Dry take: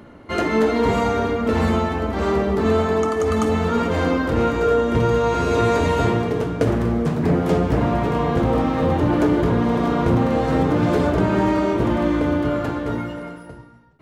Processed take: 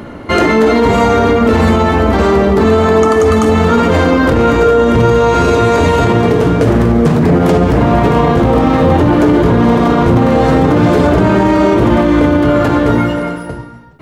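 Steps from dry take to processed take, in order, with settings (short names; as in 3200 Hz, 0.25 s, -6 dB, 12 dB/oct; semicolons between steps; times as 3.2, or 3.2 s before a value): maximiser +16 dB; gain -1 dB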